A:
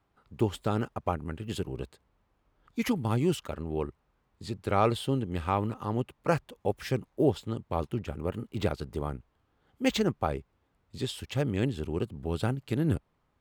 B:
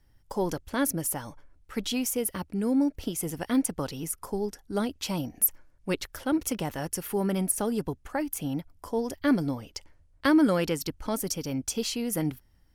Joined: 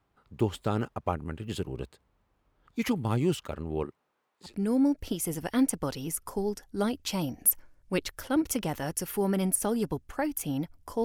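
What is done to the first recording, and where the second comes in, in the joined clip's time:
A
3.83–4.55 HPF 160 Hz -> 800 Hz
4.49 switch to B from 2.45 s, crossfade 0.12 s

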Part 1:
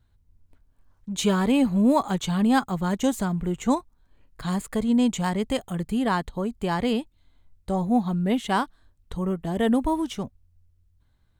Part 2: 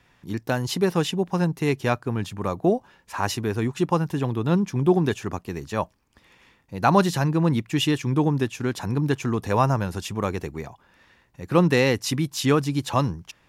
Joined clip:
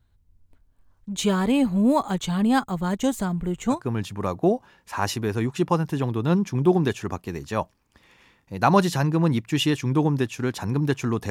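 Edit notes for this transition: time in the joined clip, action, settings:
part 1
3.76 switch to part 2 from 1.97 s, crossfade 0.14 s

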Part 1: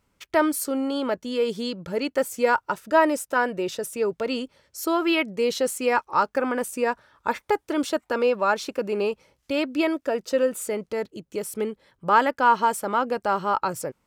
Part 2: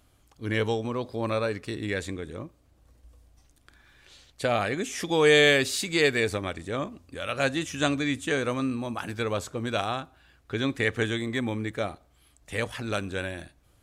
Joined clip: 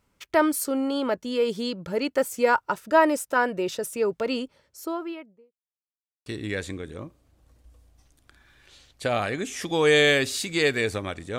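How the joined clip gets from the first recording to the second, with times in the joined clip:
part 1
4.26–5.55 studio fade out
5.55–6.26 mute
6.26 switch to part 2 from 1.65 s

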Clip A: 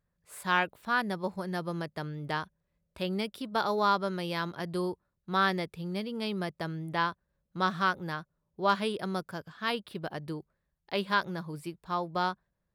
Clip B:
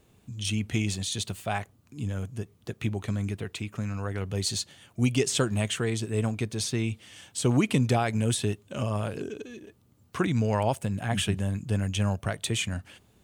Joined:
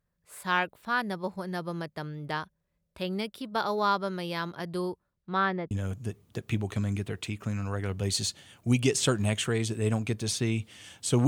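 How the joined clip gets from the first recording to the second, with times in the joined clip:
clip A
5.1–5.71 LPF 6900 Hz -> 1200 Hz
5.71 switch to clip B from 2.03 s

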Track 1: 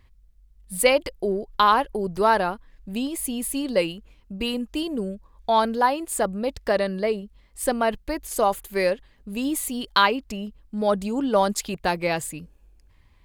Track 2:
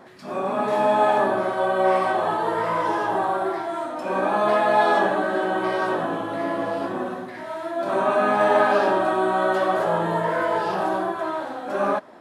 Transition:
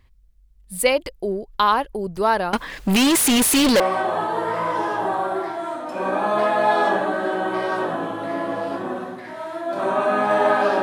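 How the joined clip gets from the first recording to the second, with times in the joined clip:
track 1
2.53–3.8 overdrive pedal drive 39 dB, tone 7600 Hz, clips at -9 dBFS
3.8 switch to track 2 from 1.9 s

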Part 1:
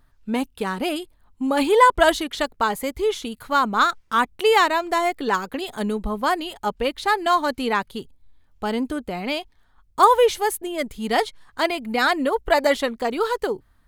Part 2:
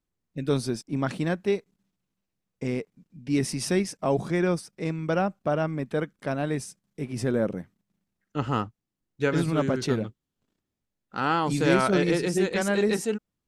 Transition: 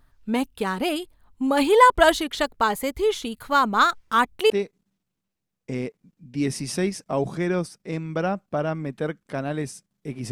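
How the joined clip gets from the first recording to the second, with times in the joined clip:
part 1
4.5 switch to part 2 from 1.43 s

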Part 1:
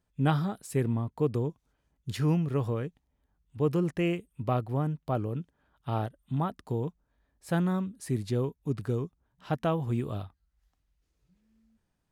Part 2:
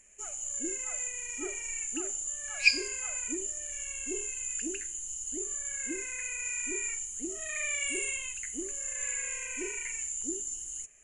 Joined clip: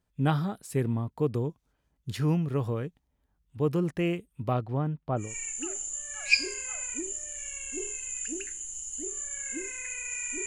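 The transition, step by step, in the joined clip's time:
part 1
4.52–5.36 LPF 7600 Hz -> 1400 Hz
5.26 switch to part 2 from 1.6 s, crossfade 0.20 s

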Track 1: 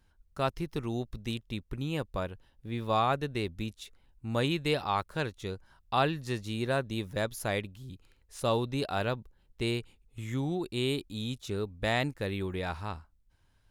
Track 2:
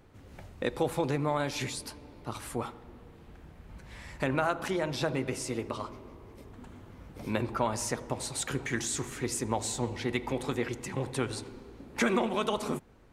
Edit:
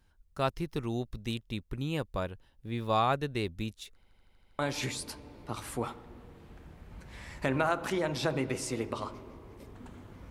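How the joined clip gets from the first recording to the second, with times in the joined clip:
track 1
3.95 stutter in place 0.08 s, 8 plays
4.59 switch to track 2 from 1.37 s

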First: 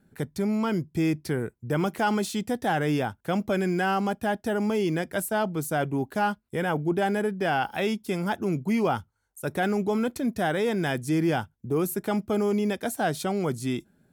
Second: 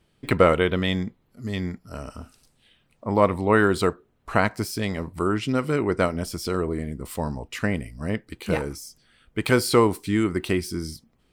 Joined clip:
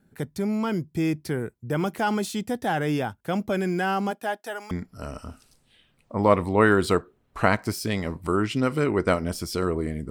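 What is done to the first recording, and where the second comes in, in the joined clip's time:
first
4.1–4.71 HPF 280 Hz -> 1100 Hz
4.71 switch to second from 1.63 s

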